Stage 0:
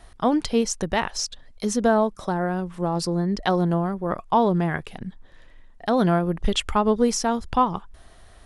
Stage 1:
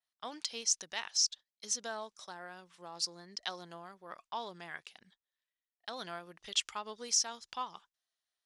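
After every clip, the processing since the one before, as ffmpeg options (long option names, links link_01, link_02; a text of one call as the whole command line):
ffmpeg -i in.wav -af "adynamicequalizer=threshold=0.00562:dfrequency=6100:dqfactor=1.8:tfrequency=6100:tqfactor=1.8:attack=5:release=100:ratio=0.375:range=3:mode=boostabove:tftype=bell,agate=range=-24dB:threshold=-37dB:ratio=16:detection=peak,bandpass=frequency=4800:width_type=q:width=0.96:csg=0,volume=-5dB" out.wav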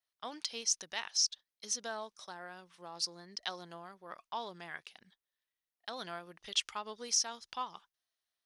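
ffmpeg -i in.wav -af "equalizer=frequency=7400:width=7:gain=-8.5" out.wav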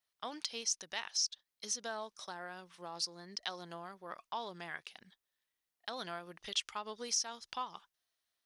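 ffmpeg -i in.wav -af "acompressor=threshold=-45dB:ratio=1.5,volume=3dB" out.wav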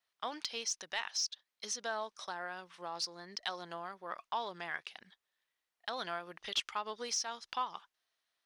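ffmpeg -i in.wav -filter_complex "[0:a]asplit=2[link_01][link_02];[link_02]highpass=frequency=720:poles=1,volume=9dB,asoftclip=type=tanh:threshold=-19.5dB[link_03];[link_01][link_03]amix=inputs=2:normalize=0,lowpass=frequency=2900:poles=1,volume=-6dB,volume=1dB" out.wav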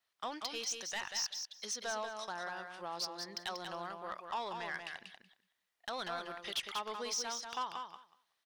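ffmpeg -i in.wav -filter_complex "[0:a]asoftclip=type=tanh:threshold=-32dB,asplit=2[link_01][link_02];[link_02]aecho=0:1:188|376|564:0.501|0.0752|0.0113[link_03];[link_01][link_03]amix=inputs=2:normalize=0,volume=1dB" out.wav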